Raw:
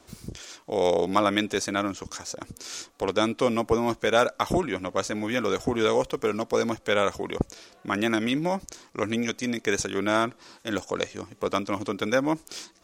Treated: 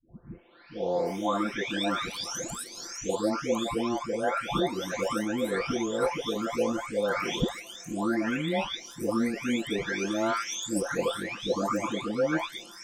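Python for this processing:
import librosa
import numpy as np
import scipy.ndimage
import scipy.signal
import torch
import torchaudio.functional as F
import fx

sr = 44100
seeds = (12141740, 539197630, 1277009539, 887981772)

y = fx.spec_delay(x, sr, highs='late', ms=979)
y = fx.rider(y, sr, range_db=4, speed_s=0.5)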